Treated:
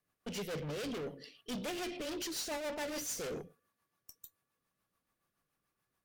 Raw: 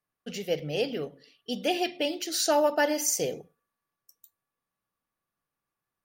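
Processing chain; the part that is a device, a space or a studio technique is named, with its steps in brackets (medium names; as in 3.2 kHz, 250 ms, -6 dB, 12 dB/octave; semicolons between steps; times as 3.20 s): overdriven rotary cabinet (valve stage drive 43 dB, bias 0.3; rotary cabinet horn 7 Hz); trim +7 dB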